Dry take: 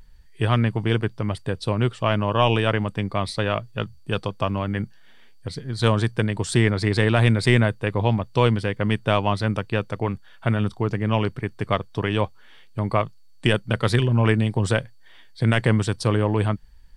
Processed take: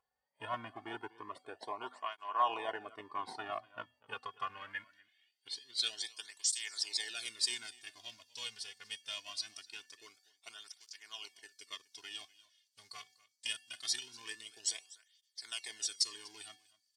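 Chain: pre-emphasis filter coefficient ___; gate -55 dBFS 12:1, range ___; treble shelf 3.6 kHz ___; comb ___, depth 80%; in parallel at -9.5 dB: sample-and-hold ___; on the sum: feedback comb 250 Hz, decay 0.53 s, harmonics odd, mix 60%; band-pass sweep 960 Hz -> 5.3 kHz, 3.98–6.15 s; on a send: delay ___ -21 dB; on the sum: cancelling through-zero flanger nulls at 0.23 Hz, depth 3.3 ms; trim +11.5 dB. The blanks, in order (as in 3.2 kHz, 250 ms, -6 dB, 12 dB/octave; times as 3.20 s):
0.8, -8 dB, +6 dB, 2.8 ms, 34×, 244 ms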